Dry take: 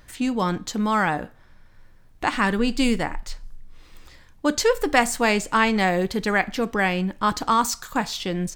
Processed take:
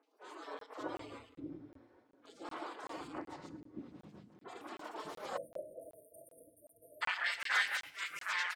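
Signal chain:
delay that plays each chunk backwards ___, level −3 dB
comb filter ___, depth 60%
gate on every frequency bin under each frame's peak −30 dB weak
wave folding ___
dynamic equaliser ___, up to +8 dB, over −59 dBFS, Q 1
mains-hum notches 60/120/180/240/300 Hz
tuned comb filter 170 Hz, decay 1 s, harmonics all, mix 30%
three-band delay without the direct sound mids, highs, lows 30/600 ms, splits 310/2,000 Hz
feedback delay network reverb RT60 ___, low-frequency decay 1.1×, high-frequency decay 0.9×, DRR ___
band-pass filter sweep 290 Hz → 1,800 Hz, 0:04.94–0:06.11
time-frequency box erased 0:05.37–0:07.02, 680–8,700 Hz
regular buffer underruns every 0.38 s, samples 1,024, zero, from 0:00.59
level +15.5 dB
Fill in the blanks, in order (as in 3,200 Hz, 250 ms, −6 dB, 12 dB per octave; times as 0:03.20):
105 ms, 5.4 ms, −31.5 dBFS, 1,100 Hz, 0.58 s, 12 dB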